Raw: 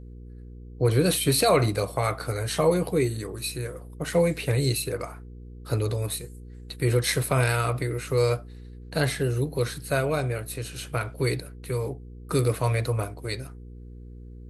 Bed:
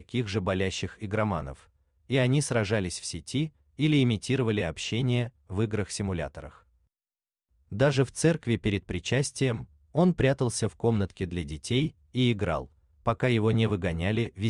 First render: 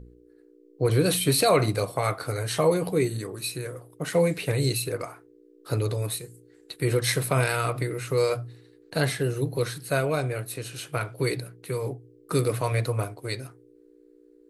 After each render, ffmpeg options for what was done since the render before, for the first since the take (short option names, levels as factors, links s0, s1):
-af "bandreject=f=60:t=h:w=4,bandreject=f=120:t=h:w=4,bandreject=f=180:t=h:w=4,bandreject=f=240:t=h:w=4"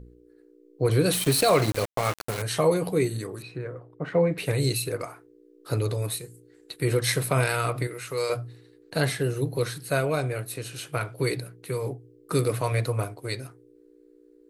-filter_complex "[0:a]asettb=1/sr,asplit=3[s0][s1][s2];[s0]atrim=end=1.134[s3];[s1]atrim=start=1.13:end=2.42,asetpts=PTS-STARTPTS,afade=t=in:d=0.004:c=qsin,afade=t=out:st=1.286:d=0.004:c=qsin,aeval=exprs='val(0)*gte(abs(val(0)),0.0422)':c=same[s4];[s2]atrim=start=2.416[s5];[s3][s4]acrossfade=d=0.004:c1=hsin:c2=qsin[s6];[s6][s5]acrossfade=d=0.004:c1=qsin:c2=hsin,asettb=1/sr,asplit=3[s7][s8][s9];[s7]atrim=end=3.424[s10];[s8]atrim=start=3.42:end=4.38,asetpts=PTS-STARTPTS,afade=t=in:d=0.004:c=qsin,afade=t=out:st=0.956:d=0.004:c=qsin,lowpass=1800[s11];[s9]atrim=start=4.376[s12];[s10][s11]acrossfade=d=0.004:c1=hsin:c2=qsin[s13];[s13][s12]acrossfade=d=0.004:c1=qsin:c2=hsin,asettb=1/sr,asplit=3[s14][s15][s16];[s14]atrim=end=7.874[s17];[s15]atrim=start=7.87:end=8.3,asetpts=PTS-STARTPTS,afade=t=in:d=0.004:c=qsin,afade=t=out:st=0.426:d=0.004:c=qsin,lowshelf=f=450:g=-11[s18];[s16]atrim=start=8.296[s19];[s17][s18]acrossfade=d=0.004:c1=hsin:c2=qsin[s20];[s20][s19]acrossfade=d=0.004:c1=qsin:c2=hsin"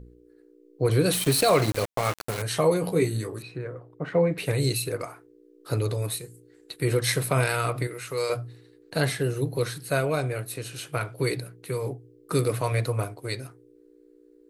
-filter_complex "[0:a]asettb=1/sr,asplit=3[s0][s1][s2];[s0]atrim=end=2.824[s3];[s1]atrim=start=2.82:end=3.39,asetpts=PTS-STARTPTS,afade=t=in:d=0.004:c=qsin,afade=t=out:st=0.566:d=0.004:c=qsin,asplit=2[s4][s5];[s5]adelay=18,volume=0.531[s6];[s4][s6]amix=inputs=2:normalize=0,atrim=end_sample=25137[s7];[s2]atrim=start=3.386[s8];[s3][s7]acrossfade=d=0.004:c1=hsin:c2=qsin[s9];[s9][s8]acrossfade=d=0.004:c1=qsin:c2=hsin"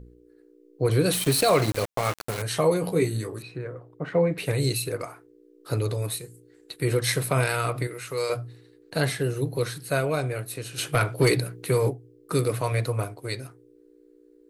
-filter_complex "[0:a]asplit=3[s0][s1][s2];[s0]afade=t=out:st=10.77:d=0.02[s3];[s1]aeval=exprs='0.237*sin(PI/2*1.58*val(0)/0.237)':c=same,afade=t=in:st=10.77:d=0.02,afade=t=out:st=11.89:d=0.02[s4];[s2]afade=t=in:st=11.89:d=0.02[s5];[s3][s4][s5]amix=inputs=3:normalize=0"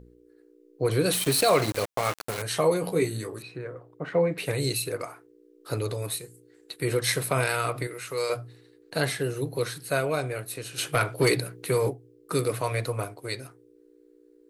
-af "lowshelf=f=190:g=-7"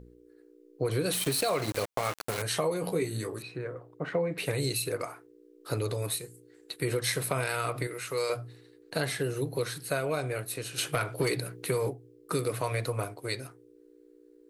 -af "acompressor=threshold=0.0501:ratio=4"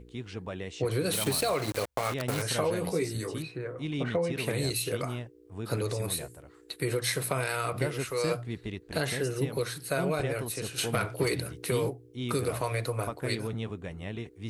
-filter_complex "[1:a]volume=0.299[s0];[0:a][s0]amix=inputs=2:normalize=0"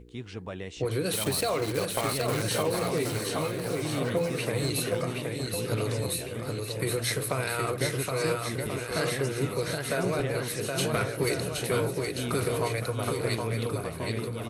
-af "aecho=1:1:770|1386|1879|2273|2588:0.631|0.398|0.251|0.158|0.1"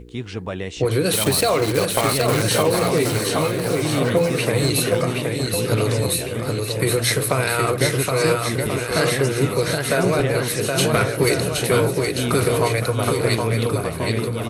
-af "volume=2.99"